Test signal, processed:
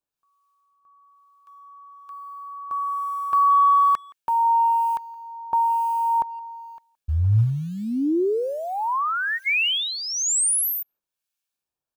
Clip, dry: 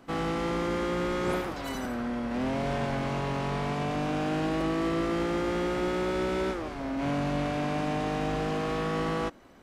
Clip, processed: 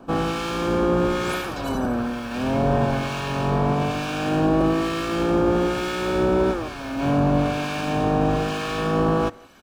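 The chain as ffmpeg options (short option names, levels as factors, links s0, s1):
-filter_complex "[0:a]adynamicequalizer=threshold=0.00178:dfrequency=110:dqfactor=5.3:tfrequency=110:tqfactor=5.3:attack=5:release=100:ratio=0.375:range=3:mode=boostabove:tftype=bell,asplit=2[s0][s1];[s1]acrusher=bits=5:mode=log:mix=0:aa=0.000001,volume=0.316[s2];[s0][s2]amix=inputs=2:normalize=0,acrossover=split=1300[s3][s4];[s3]aeval=exprs='val(0)*(1-0.7/2+0.7/2*cos(2*PI*1.1*n/s))':c=same[s5];[s4]aeval=exprs='val(0)*(1-0.7/2-0.7/2*cos(2*PI*1.1*n/s))':c=same[s6];[s5][s6]amix=inputs=2:normalize=0,asuperstop=centerf=2000:order=12:qfactor=7.1,asplit=2[s7][s8];[s8]adelay=170,highpass=300,lowpass=3400,asoftclip=type=hard:threshold=0.0473,volume=0.0631[s9];[s7][s9]amix=inputs=2:normalize=0,volume=2.51"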